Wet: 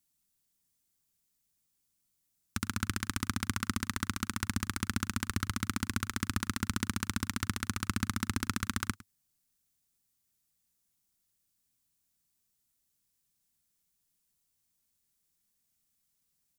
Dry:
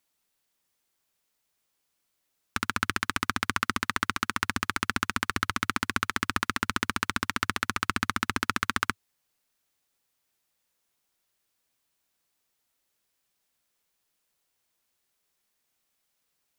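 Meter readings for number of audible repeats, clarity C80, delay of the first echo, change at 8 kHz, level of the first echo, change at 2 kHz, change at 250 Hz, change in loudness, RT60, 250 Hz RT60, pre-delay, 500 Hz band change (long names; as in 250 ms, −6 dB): 1, no reverb audible, 106 ms, −0.5 dB, −19.5 dB, −9.5 dB, 0.0 dB, −5.5 dB, no reverb audible, no reverb audible, no reverb audible, −8.0 dB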